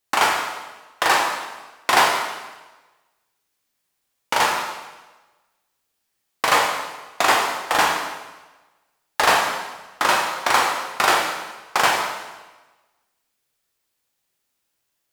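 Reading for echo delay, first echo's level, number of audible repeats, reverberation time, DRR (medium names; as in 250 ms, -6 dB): no echo, no echo, no echo, 1.2 s, -0.5 dB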